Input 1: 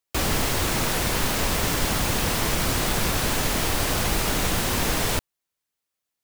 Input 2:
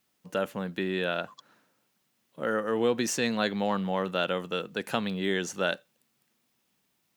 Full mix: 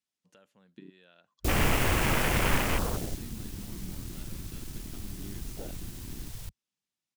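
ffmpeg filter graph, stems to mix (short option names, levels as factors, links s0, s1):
-filter_complex "[0:a]bandreject=f=81.17:t=h:w=4,bandreject=f=162.34:t=h:w=4,bandreject=f=243.51:t=h:w=4,bandreject=f=324.68:t=h:w=4,bandreject=f=405.85:t=h:w=4,bandreject=f=487.02:t=h:w=4,bandreject=f=568.19:t=h:w=4,bandreject=f=649.36:t=h:w=4,bandreject=f=730.53:t=h:w=4,bandreject=f=811.7:t=h:w=4,bandreject=f=892.87:t=h:w=4,bandreject=f=974.04:t=h:w=4,bandreject=f=1055.21:t=h:w=4,bandreject=f=1136.38:t=h:w=4,bandreject=f=1217.55:t=h:w=4,bandreject=f=1298.72:t=h:w=4,bandreject=f=1379.89:t=h:w=4,bandreject=f=1461.06:t=h:w=4,bandreject=f=1542.23:t=h:w=4,bandreject=f=1623.4:t=h:w=4,bandreject=f=1704.57:t=h:w=4,bandreject=f=1785.74:t=h:w=4,bandreject=f=1866.91:t=h:w=4,bandreject=f=1948.08:t=h:w=4,bandreject=f=2029.25:t=h:w=4,bandreject=f=2110.42:t=h:w=4,bandreject=f=2191.59:t=h:w=4,bandreject=f=2272.76:t=h:w=4,bandreject=f=2353.93:t=h:w=4,bandreject=f=2435.1:t=h:w=4,bandreject=f=2516.27:t=h:w=4,bandreject=f=2597.44:t=h:w=4,acrusher=bits=3:mix=0:aa=0.5,adelay=1300,volume=0.75,afade=t=out:st=2.54:d=0.69:silence=0.237137[s0];[1:a]lowpass=7800,acompressor=threshold=0.00501:ratio=2,volume=0.562[s1];[s0][s1]amix=inputs=2:normalize=0,lowshelf=f=190:g=3.5,afwtdn=0.0282,highshelf=f=2800:g=11.5"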